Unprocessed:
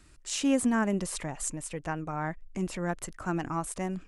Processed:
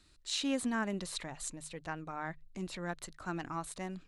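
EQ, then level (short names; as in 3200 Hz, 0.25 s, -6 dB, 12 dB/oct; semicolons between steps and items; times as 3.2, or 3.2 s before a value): bell 4000 Hz +13.5 dB 0.46 oct; dynamic EQ 1700 Hz, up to +4 dB, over -43 dBFS, Q 0.76; notches 50/100/150 Hz; -8.5 dB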